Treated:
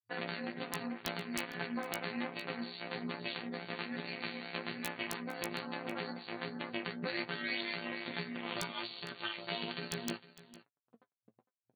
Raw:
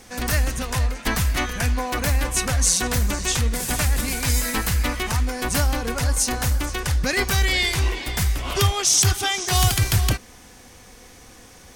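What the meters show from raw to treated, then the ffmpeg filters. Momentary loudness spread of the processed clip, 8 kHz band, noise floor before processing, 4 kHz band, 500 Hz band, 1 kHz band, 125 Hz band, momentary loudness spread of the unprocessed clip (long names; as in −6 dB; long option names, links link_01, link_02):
4 LU, −30.0 dB, −47 dBFS, −16.5 dB, −12.5 dB, −15.5 dB, −27.5 dB, 6 LU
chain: -filter_complex "[0:a]afftfilt=real='re*gte(hypot(re,im),0.0224)':imag='im*gte(hypot(re,im),0.0224)':win_size=1024:overlap=0.75,bandreject=frequency=140.3:width_type=h:width=4,bandreject=frequency=280.6:width_type=h:width=4,bandreject=frequency=420.9:width_type=h:width=4,bandreject=frequency=561.2:width_type=h:width=4,bandreject=frequency=701.5:width_type=h:width=4,bandreject=frequency=841.8:width_type=h:width=4,bandreject=frequency=982.1:width_type=h:width=4,bandreject=frequency=1122.4:width_type=h:width=4,bandreject=frequency=1262.7:width_type=h:width=4,bandreject=frequency=1403:width_type=h:width=4,bandreject=frequency=1543.3:width_type=h:width=4,bandreject=frequency=1683.6:width_type=h:width=4,bandreject=frequency=1823.9:width_type=h:width=4,afftfilt=real='hypot(re,im)*cos(PI*b)':imag='0':win_size=1024:overlap=0.75,acompressor=threshold=-42dB:ratio=3,tremolo=f=240:d=0.788,aeval=exprs='sgn(val(0))*max(abs(val(0))-0.00266,0)':channel_layout=same,afftfilt=real='re*between(b*sr/4096,110,4600)':imag='im*between(b*sr/4096,110,4600)':win_size=4096:overlap=0.75,flanger=delay=6.9:depth=3.4:regen=41:speed=1.2:shape=sinusoidal,aeval=exprs='(mod(37.6*val(0)+1,2)-1)/37.6':channel_layout=same,asplit=2[link_01][link_02];[link_02]adelay=17,volume=-12dB[link_03];[link_01][link_03]amix=inputs=2:normalize=0,asplit=2[link_04][link_05];[link_05]aecho=0:1:456:0.133[link_06];[link_04][link_06]amix=inputs=2:normalize=0,volume=13dB"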